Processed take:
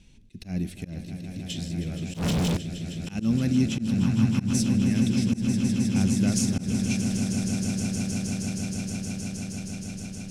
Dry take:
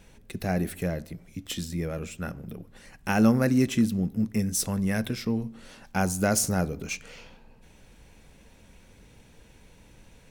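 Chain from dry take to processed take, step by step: LPF 7200 Hz 12 dB/oct; band shelf 890 Hz -13.5 dB 2.5 oct; swelling echo 0.157 s, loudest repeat 8, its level -10 dB; 2.14–2.57 sample leveller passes 5; auto swell 0.13 s; 3.98–4.53 graphic EQ 125/500/1000 Hz +5/-7/+11 dB

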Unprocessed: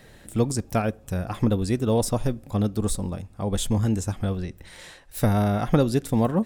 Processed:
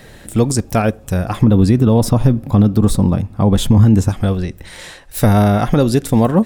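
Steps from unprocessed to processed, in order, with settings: 1.41–4.09 graphic EQ 125/250/1000/8000 Hz +8/+6/+4/-7 dB; maximiser +11 dB; gain -1 dB

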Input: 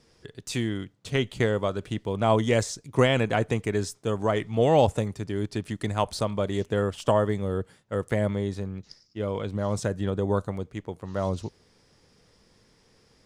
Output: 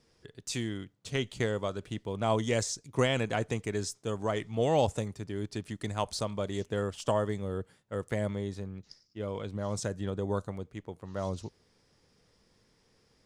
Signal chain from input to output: dynamic EQ 6300 Hz, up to +7 dB, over -50 dBFS, Q 0.89; gain -6.5 dB

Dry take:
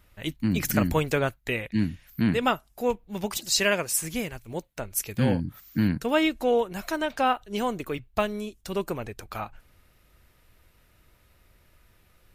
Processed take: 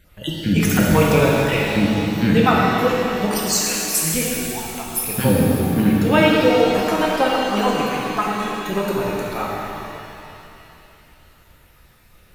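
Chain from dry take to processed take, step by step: random spectral dropouts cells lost 35%; 3.52–3.93 differentiator; shimmer reverb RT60 2.8 s, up +7 st, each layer -8 dB, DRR -4 dB; gain +5.5 dB

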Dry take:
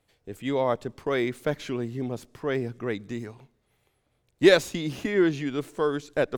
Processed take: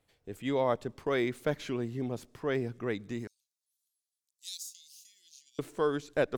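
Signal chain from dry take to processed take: 3.27–5.59 inverse Chebyshev high-pass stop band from 1500 Hz, stop band 60 dB; gain -3.5 dB

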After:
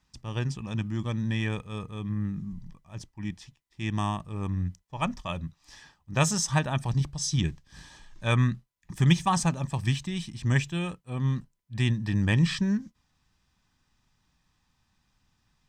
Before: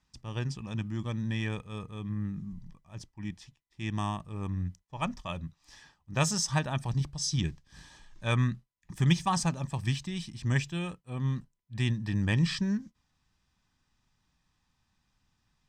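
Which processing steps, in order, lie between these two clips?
dynamic EQ 4900 Hz, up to -5 dB, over -54 dBFS, Q 3.6; gain +3.5 dB

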